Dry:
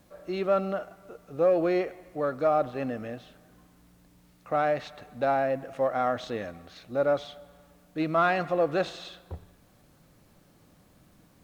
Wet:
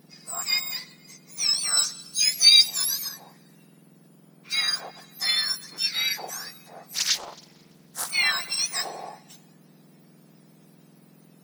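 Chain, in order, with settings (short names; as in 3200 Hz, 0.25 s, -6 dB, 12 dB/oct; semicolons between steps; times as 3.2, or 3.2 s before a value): spectrum mirrored in octaves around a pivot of 1700 Hz; 1.77–3.09 resonant high shelf 2600 Hz +8 dB, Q 1.5; 6.93–8.11 Doppler distortion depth 0.47 ms; gain +4.5 dB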